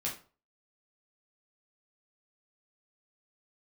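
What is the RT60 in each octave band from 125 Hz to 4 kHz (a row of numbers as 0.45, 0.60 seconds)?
0.45, 0.35, 0.40, 0.35, 0.30, 0.30 seconds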